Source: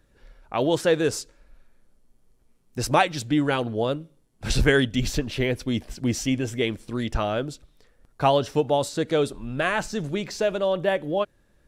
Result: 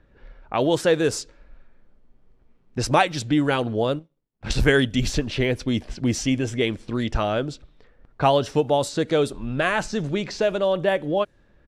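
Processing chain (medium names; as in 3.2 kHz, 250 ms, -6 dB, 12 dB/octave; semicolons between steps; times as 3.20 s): 3.99–4.62 s: power-law waveshaper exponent 1.4; in parallel at -2.5 dB: compression, threshold -30 dBFS, peak gain reduction 15 dB; on the sum: resampled via 32 kHz; level-controlled noise filter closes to 2.5 kHz, open at -16.5 dBFS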